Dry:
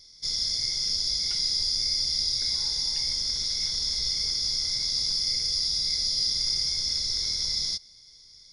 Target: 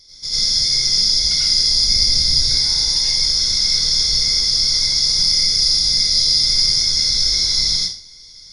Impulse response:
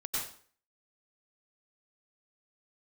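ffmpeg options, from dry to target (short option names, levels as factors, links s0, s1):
-filter_complex "[0:a]asettb=1/sr,asplit=3[s0][s1][s2];[s0]atrim=end=1.794[s3];[s1]atrim=start=1.79:end=2.47,asetpts=PTS-STARTPTS,afade=t=in:d=0.004:c=qsin,afade=t=out:st=0.676:d=0.004:c=qsin,lowshelf=f=260:g=8[s4];[s2]atrim=start=2.466[s5];[s3][s4]acrossfade=d=0.004:c1=hsin:c2=qsin[s6];[s6][s5]acrossfade=d=0.004:c1=qsin:c2=hsin[s7];[1:a]atrim=start_sample=2205,asetrate=48510,aresample=44100[s8];[s7][s8]afir=irnorm=-1:irlink=0,volume=2.66"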